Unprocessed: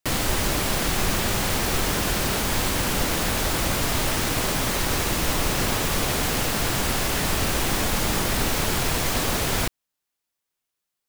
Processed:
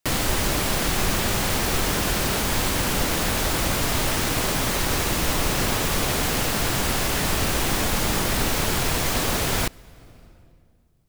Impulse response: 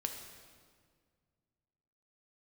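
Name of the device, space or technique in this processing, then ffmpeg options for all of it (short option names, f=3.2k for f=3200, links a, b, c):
compressed reverb return: -filter_complex "[0:a]asplit=2[a][b];[1:a]atrim=start_sample=2205[c];[b][c]afir=irnorm=-1:irlink=0,acompressor=threshold=-37dB:ratio=8,volume=-5dB[d];[a][d]amix=inputs=2:normalize=0"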